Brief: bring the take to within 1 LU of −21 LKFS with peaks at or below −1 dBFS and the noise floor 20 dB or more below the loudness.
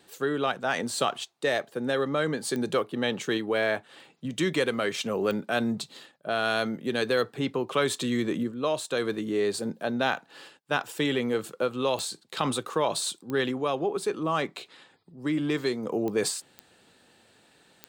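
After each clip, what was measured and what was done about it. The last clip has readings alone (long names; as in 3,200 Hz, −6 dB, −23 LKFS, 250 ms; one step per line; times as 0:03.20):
number of clicks 7; integrated loudness −28.5 LKFS; sample peak −9.5 dBFS; target loudness −21.0 LKFS
→ click removal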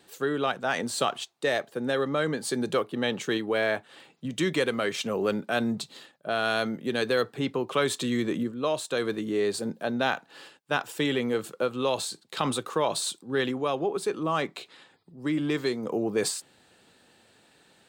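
number of clicks 0; integrated loudness −28.5 LKFS; sample peak −9.5 dBFS; target loudness −21.0 LKFS
→ level +7.5 dB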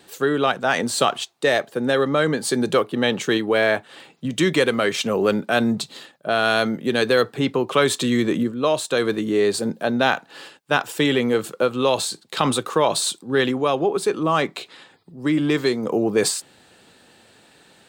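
integrated loudness −21.0 LKFS; sample peak −2.0 dBFS; background noise floor −55 dBFS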